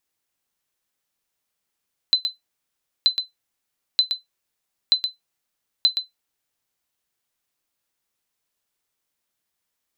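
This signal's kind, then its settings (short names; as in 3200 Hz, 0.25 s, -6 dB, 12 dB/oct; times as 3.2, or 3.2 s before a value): sonar ping 4040 Hz, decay 0.15 s, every 0.93 s, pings 5, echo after 0.12 s, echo -7.5 dB -7.5 dBFS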